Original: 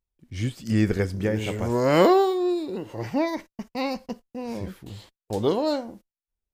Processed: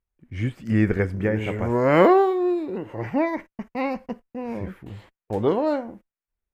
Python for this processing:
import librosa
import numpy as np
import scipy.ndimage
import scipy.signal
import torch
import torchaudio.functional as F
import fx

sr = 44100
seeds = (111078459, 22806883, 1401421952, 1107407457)

y = fx.high_shelf_res(x, sr, hz=3000.0, db=-12.0, q=1.5)
y = F.gain(torch.from_numpy(y), 1.5).numpy()